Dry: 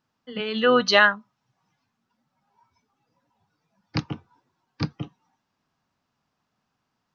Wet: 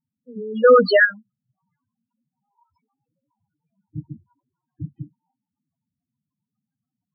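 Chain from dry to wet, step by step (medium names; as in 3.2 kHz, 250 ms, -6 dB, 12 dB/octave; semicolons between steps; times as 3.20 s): rotary cabinet horn 1 Hz, later 7 Hz, at 3.05 s; 0.64–1.05 s: overdrive pedal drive 30 dB, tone 1.7 kHz, clips at -2 dBFS; loudest bins only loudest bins 4; trim +1.5 dB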